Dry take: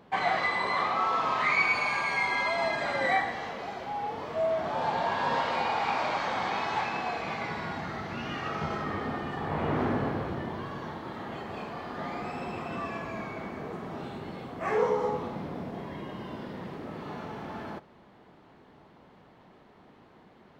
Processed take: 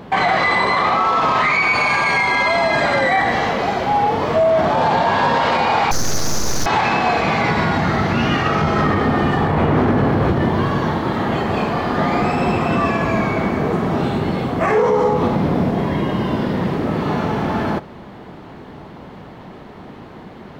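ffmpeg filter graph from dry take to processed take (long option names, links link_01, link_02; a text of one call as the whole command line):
ffmpeg -i in.wav -filter_complex "[0:a]asettb=1/sr,asplit=3[link_01][link_02][link_03];[link_01]atrim=end=5.914[link_04];[link_02]atrim=start=5.91:end=6.66,asetpts=PTS-STARTPTS,afade=type=in:duration=0.004:curve=qsin,afade=type=out:start_time=0.746:duration=0.004:curve=qsin,lowpass=frequency=3300:width_type=q:width=0.5098,lowpass=frequency=3300:width_type=q:width=0.6013,lowpass=frequency=3300:width_type=q:width=0.9,lowpass=frequency=3300:width_type=q:width=2.563,afreqshift=-3900,aeval=exprs='abs(val(0))':channel_layout=same[link_05];[link_03]atrim=start=6.656[link_06];[link_04][link_05]acrossfade=duration=0.004:curve1=hsin:curve2=qsin[link_07];[link_07][link_06]acrossfade=duration=0.004:curve1=qsin:curve2=hsin,lowshelf=frequency=280:gain=5.5,alimiter=level_in=24dB:limit=-1dB:release=50:level=0:latency=1,volume=-7dB" out.wav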